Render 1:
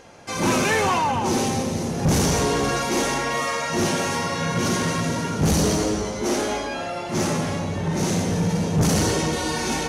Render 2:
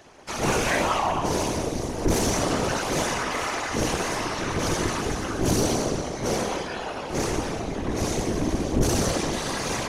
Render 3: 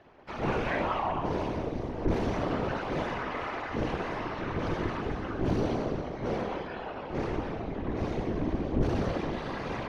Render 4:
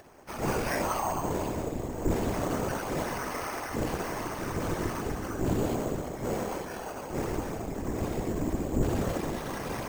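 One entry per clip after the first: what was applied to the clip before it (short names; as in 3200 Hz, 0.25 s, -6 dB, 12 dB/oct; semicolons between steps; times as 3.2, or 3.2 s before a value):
ring modulator 140 Hz; whisperiser
air absorption 360 m; gain -4.5 dB
upward compressor, threshold -49 dBFS; careless resampling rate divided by 6×, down none, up hold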